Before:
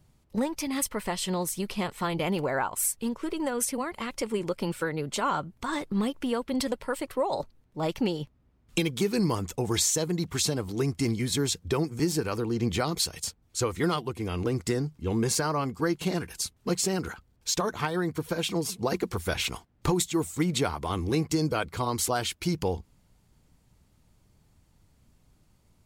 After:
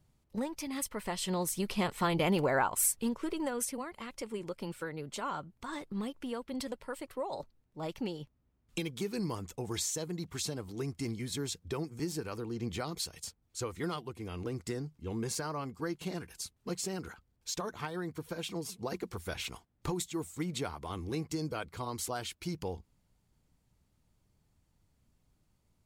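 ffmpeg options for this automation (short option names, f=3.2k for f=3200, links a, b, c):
-af "volume=-0.5dB,afade=t=in:st=0.89:d=1.05:silence=0.446684,afade=t=out:st=2.73:d=1.18:silence=0.354813"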